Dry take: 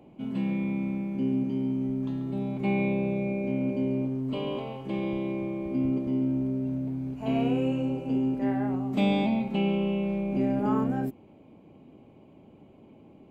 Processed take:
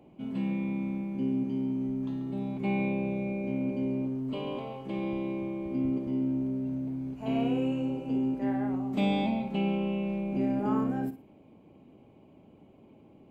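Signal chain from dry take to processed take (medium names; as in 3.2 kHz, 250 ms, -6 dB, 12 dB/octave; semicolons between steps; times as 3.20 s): flutter echo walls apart 9.7 m, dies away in 0.29 s; trim -3 dB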